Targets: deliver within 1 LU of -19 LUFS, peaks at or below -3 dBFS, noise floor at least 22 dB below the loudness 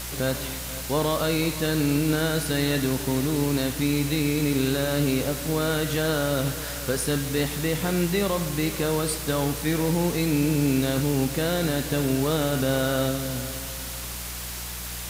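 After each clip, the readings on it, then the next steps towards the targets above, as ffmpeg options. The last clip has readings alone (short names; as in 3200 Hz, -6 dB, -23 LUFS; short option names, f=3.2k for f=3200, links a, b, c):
hum 60 Hz; harmonics up to 180 Hz; hum level -36 dBFS; noise floor -34 dBFS; noise floor target -47 dBFS; loudness -25.0 LUFS; peak -11.0 dBFS; loudness target -19.0 LUFS
-> -af "bandreject=f=60:t=h:w=4,bandreject=f=120:t=h:w=4,bandreject=f=180:t=h:w=4"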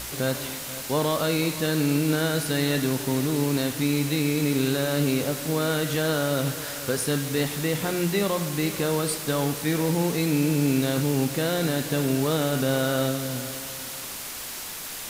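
hum none; noise floor -36 dBFS; noise floor target -47 dBFS
-> -af "afftdn=nr=11:nf=-36"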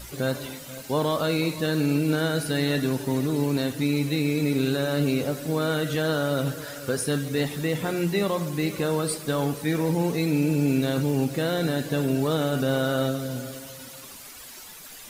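noise floor -43 dBFS; noise floor target -48 dBFS
-> -af "afftdn=nr=6:nf=-43"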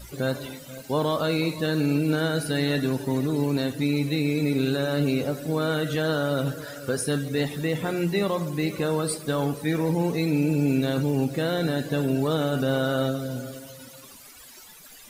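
noise floor -47 dBFS; noise floor target -48 dBFS
-> -af "afftdn=nr=6:nf=-47"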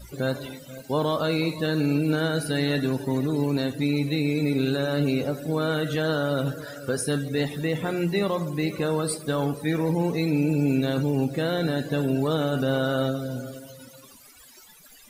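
noise floor -50 dBFS; loudness -25.5 LUFS; peak -12.5 dBFS; loudness target -19.0 LUFS
-> -af "volume=6.5dB"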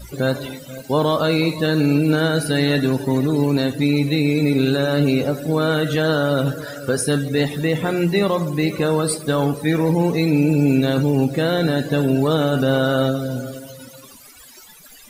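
loudness -19.0 LUFS; peak -6.0 dBFS; noise floor -44 dBFS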